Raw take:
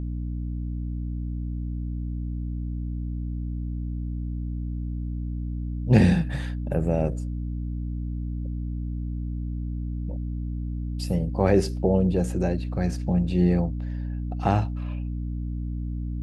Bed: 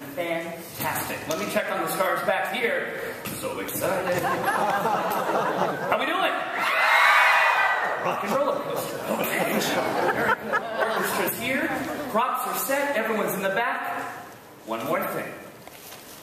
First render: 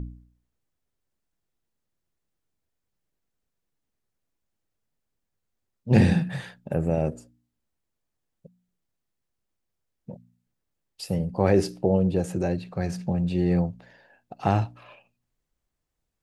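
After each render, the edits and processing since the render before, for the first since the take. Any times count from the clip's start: de-hum 60 Hz, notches 5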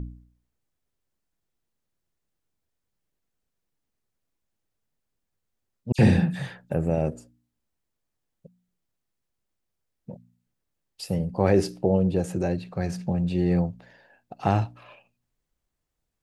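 5.92–6.7 dispersion lows, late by 67 ms, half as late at 2800 Hz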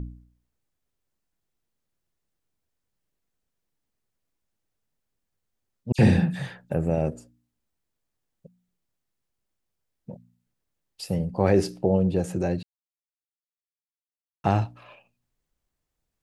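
12.63–14.44 mute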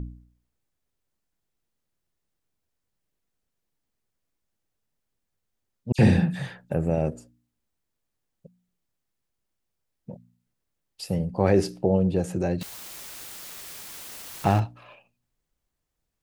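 12.61–14.6 zero-crossing step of -29 dBFS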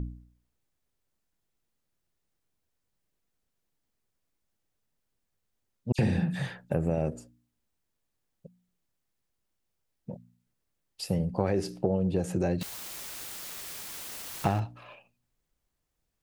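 compressor 10:1, threshold -22 dBFS, peak gain reduction 10 dB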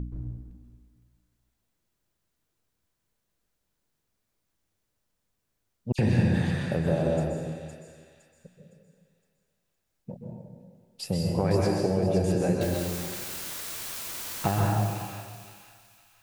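thin delay 0.512 s, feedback 37%, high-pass 2500 Hz, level -5 dB; plate-style reverb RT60 1.7 s, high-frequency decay 0.55×, pre-delay 0.115 s, DRR -2 dB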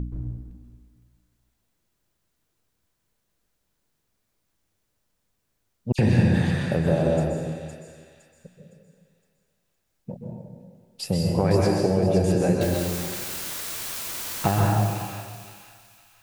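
gain +4 dB

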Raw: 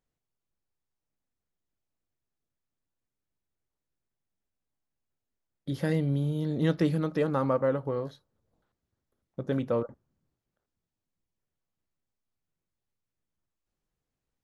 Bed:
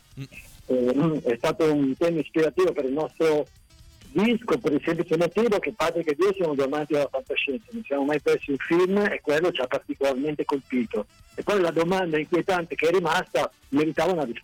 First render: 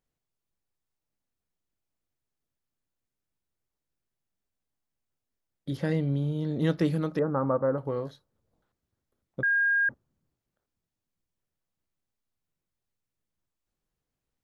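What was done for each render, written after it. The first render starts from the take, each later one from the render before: 5.77–6.6 air absorption 54 m; 7.19–7.78 steep low-pass 1600 Hz; 9.43–9.89 bleep 1620 Hz -21 dBFS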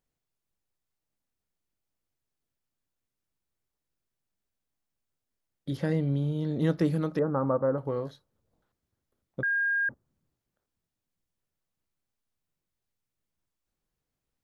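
dynamic EQ 3000 Hz, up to -7 dB, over -43 dBFS, Q 0.93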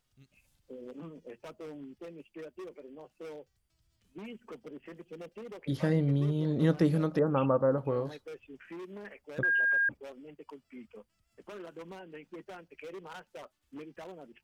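add bed -23 dB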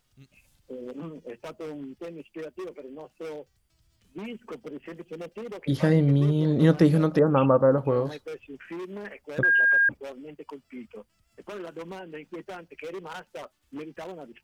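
gain +7 dB

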